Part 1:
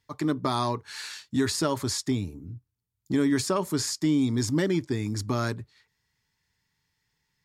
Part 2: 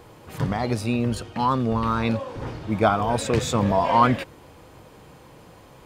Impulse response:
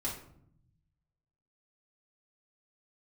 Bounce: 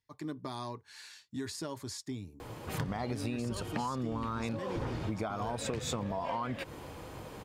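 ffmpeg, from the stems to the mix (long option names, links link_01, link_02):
-filter_complex "[0:a]bandreject=frequency=1300:width=9.7,volume=-12.5dB[link_01];[1:a]acompressor=threshold=-26dB:ratio=6,adelay=2400,volume=2dB[link_02];[link_01][link_02]amix=inputs=2:normalize=0,acompressor=threshold=-32dB:ratio=6"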